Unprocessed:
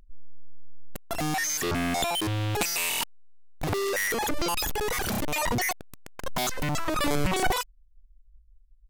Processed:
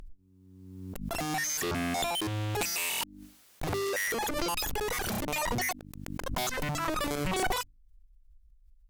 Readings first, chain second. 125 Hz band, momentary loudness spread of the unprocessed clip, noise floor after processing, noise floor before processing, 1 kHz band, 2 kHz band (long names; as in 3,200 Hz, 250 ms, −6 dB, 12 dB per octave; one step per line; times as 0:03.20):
−4.0 dB, 10 LU, −60 dBFS, −57 dBFS, −3.5 dB, −3.5 dB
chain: mains-hum notches 50/100/150/200/250/300 Hz
harmonic generator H 4 −23 dB, 5 −28 dB, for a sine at −13.5 dBFS
background raised ahead of every attack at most 37 dB per second
level −5 dB